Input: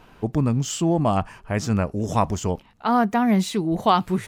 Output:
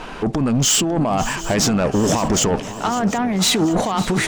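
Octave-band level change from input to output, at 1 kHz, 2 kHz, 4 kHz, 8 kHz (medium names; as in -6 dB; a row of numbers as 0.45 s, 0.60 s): +0.5 dB, +7.5 dB, +12.5 dB, +14.5 dB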